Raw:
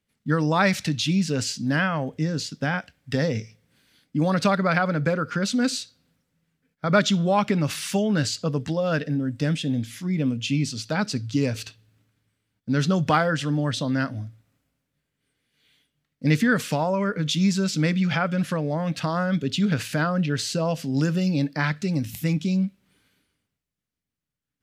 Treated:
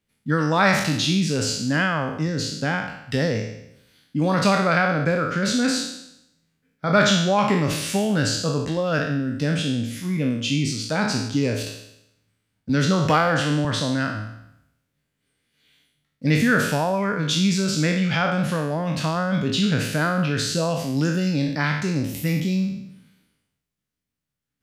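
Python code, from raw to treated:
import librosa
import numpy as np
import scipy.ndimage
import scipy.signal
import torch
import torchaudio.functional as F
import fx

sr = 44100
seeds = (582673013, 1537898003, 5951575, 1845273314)

y = fx.spec_trails(x, sr, decay_s=0.8)
y = fx.band_squash(y, sr, depth_pct=40, at=(12.69, 13.65))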